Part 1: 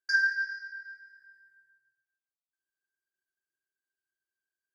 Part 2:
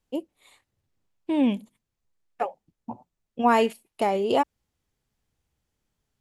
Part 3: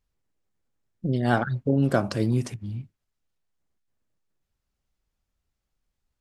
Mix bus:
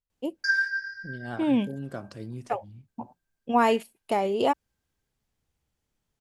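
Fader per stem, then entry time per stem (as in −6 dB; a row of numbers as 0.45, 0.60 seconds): +1.0, −1.5, −14.5 decibels; 0.35, 0.10, 0.00 seconds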